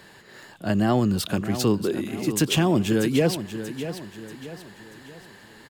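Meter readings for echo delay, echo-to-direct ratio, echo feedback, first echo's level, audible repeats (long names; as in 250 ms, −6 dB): 636 ms, −10.0 dB, 43%, −11.0 dB, 4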